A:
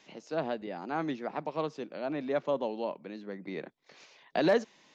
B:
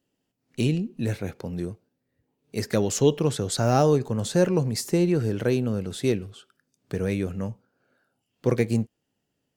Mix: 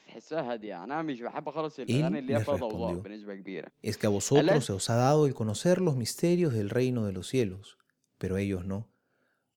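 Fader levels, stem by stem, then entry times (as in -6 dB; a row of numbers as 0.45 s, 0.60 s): 0.0 dB, -4.0 dB; 0.00 s, 1.30 s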